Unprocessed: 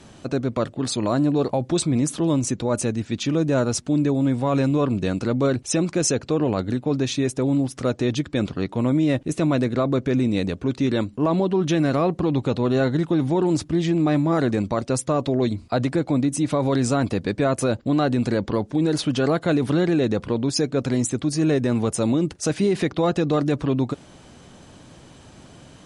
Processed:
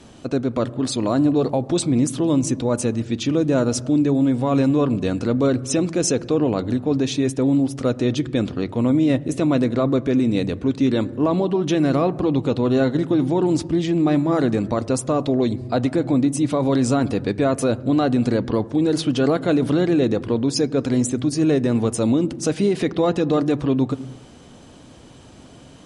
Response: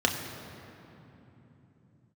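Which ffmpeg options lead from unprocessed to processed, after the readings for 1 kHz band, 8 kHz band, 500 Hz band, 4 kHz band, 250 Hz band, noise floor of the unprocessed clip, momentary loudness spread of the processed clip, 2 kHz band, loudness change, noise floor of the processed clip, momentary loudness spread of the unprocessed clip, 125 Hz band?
+0.5 dB, 0.0 dB, +2.0 dB, +0.5 dB, +2.5 dB, −47 dBFS, 4 LU, −1.0 dB, +2.0 dB, −44 dBFS, 4 LU, 0.0 dB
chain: -filter_complex "[0:a]asplit=2[link_01][link_02];[link_02]lowpass=frequency=1300:poles=1[link_03];[1:a]atrim=start_sample=2205,afade=type=out:start_time=0.36:duration=0.01,atrim=end_sample=16317[link_04];[link_03][link_04]afir=irnorm=-1:irlink=0,volume=-21dB[link_05];[link_01][link_05]amix=inputs=2:normalize=0"

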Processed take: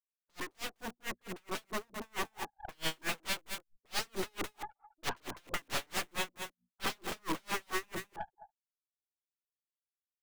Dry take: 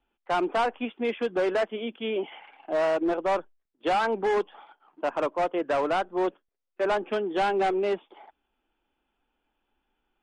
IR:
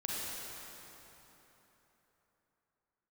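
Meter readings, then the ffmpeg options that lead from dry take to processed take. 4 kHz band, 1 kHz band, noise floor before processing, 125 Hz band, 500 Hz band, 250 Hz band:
0.0 dB, −13.5 dB, −80 dBFS, −3.5 dB, −19.5 dB, −13.5 dB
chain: -filter_complex "[0:a]afftfilt=real='re*gte(hypot(re,im),0.0112)':imag='im*gte(hypot(re,im),0.0112)':win_size=1024:overlap=0.75,asuperstop=centerf=2700:order=20:qfactor=1,asubboost=boost=3:cutoff=55,acrossover=split=490[link_01][link_02];[link_01]crystalizer=i=2.5:c=0[link_03];[link_03][link_02]amix=inputs=2:normalize=0,acompressor=threshold=-27dB:ratio=12,aeval=exprs='(mod(37.6*val(0)+1,2)-1)/37.6':channel_layout=same,bandreject=frequency=60:width_type=h:width=6,bandreject=frequency=120:width_type=h:width=6,bandreject=frequency=180:width_type=h:width=6,bandreject=frequency=240:width_type=h:width=6,aecho=1:1:212:0.2,adynamicequalizer=threshold=0.00141:dfrequency=4700:dqfactor=2.4:tfrequency=4700:tqfactor=2.4:attack=5:release=100:ratio=0.375:range=3.5:mode=cutabove:tftype=bell,aeval=exprs='(tanh(224*val(0)+0.75)-tanh(0.75))/224':channel_layout=same,dynaudnorm=framelen=500:gausssize=7:maxgain=6dB,aeval=exprs='val(0)*pow(10,-39*(0.5-0.5*cos(2*PI*4.5*n/s))/20)':channel_layout=same,volume=11dB"

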